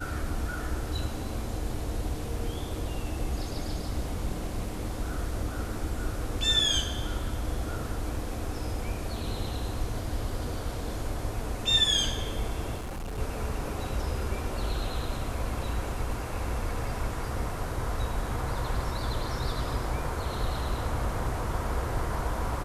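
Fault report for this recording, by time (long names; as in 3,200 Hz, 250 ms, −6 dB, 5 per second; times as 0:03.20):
0:12.77–0:13.19: clipping −32.5 dBFS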